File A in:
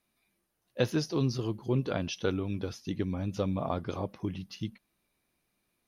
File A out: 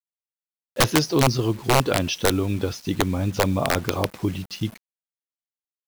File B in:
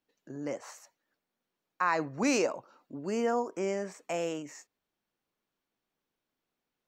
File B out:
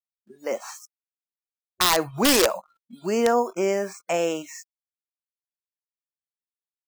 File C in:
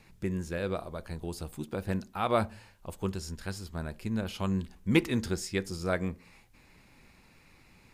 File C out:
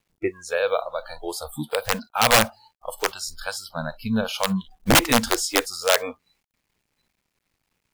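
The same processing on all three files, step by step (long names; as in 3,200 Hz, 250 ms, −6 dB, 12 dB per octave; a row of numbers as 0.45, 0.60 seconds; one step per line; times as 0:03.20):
wrap-around overflow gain 20 dB
dynamic equaliser 190 Hz, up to −4 dB, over −44 dBFS, Q 2.3
bit reduction 9 bits
noise reduction from a noise print of the clip's start 29 dB
loudness normalisation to −23 LKFS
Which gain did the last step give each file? +10.5, +9.5, +12.5 decibels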